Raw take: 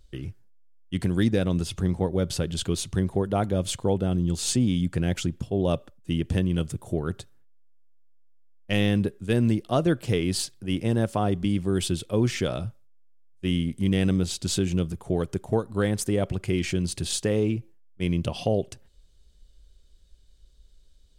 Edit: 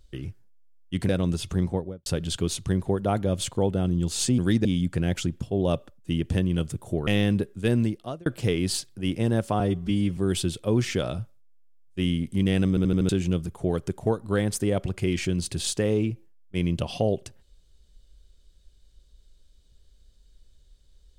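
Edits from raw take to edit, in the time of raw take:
1.09–1.36 s: move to 4.65 s
1.91–2.33 s: studio fade out
7.07–8.72 s: delete
9.39–9.91 s: fade out
11.25–11.63 s: stretch 1.5×
14.15 s: stutter in place 0.08 s, 5 plays

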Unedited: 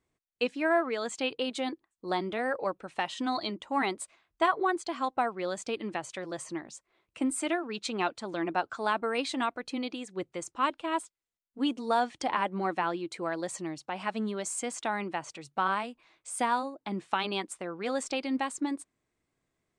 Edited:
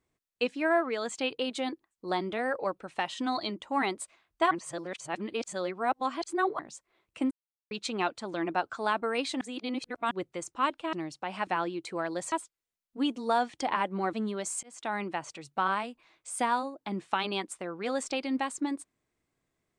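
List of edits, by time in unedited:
4.51–6.59 s: reverse
7.31–7.71 s: mute
9.41–10.11 s: reverse
10.93–12.74 s: swap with 13.59–14.13 s
14.63–14.96 s: fade in

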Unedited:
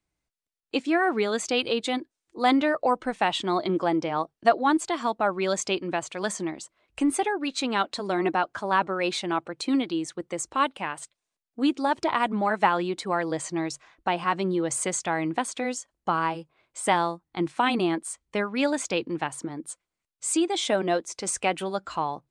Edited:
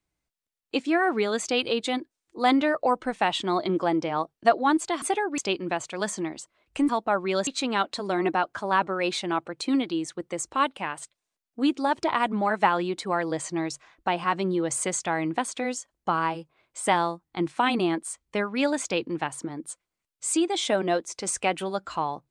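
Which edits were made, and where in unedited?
5.02–5.60 s: swap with 7.11–7.47 s

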